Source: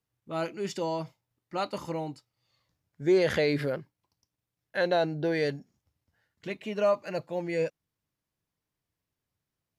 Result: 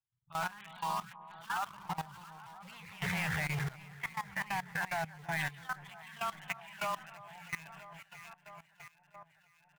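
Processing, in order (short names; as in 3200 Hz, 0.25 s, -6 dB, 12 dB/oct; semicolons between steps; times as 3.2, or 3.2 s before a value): elliptic band-stop 140–820 Hz, stop band 40 dB; spectral gate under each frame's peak -20 dB strong; treble ducked by the level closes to 2000 Hz, closed at -33.5 dBFS; downsampling 8000 Hz; in parallel at -3 dB: requantised 6-bit, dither none; on the sum: echo with dull and thin repeats by turns 0.328 s, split 1400 Hz, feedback 79%, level -8.5 dB; echoes that change speed 0.12 s, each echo +2 st, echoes 2; level quantiser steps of 17 dB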